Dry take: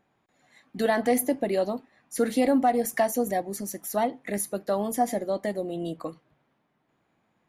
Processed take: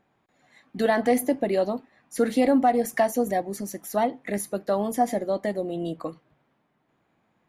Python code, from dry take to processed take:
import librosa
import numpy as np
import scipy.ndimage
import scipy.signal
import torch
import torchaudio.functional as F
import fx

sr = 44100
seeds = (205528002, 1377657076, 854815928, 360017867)

y = fx.high_shelf(x, sr, hz=6200.0, db=-6.5)
y = F.gain(torch.from_numpy(y), 2.0).numpy()